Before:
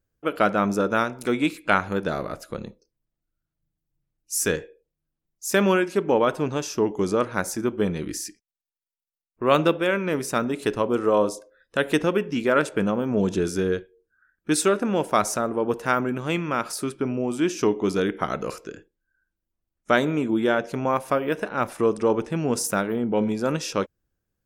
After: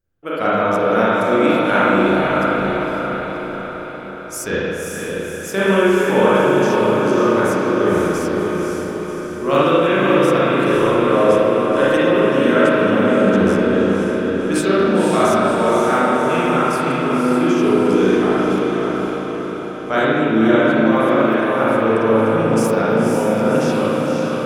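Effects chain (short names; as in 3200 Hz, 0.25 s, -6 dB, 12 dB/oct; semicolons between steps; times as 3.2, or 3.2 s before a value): diffused feedback echo 0.538 s, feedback 57%, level -3 dB; spring tank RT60 2 s, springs 36/58 ms, chirp 20 ms, DRR -9 dB; gain -3.5 dB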